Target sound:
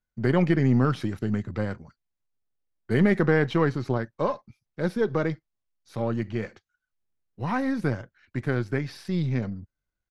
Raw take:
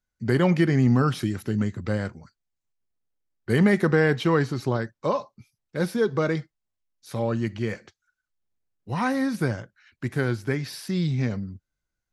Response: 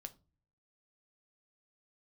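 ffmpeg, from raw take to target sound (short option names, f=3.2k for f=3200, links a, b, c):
-af "aeval=exprs='if(lt(val(0),0),0.708*val(0),val(0))':c=same,aemphasis=mode=reproduction:type=50kf,atempo=1.2"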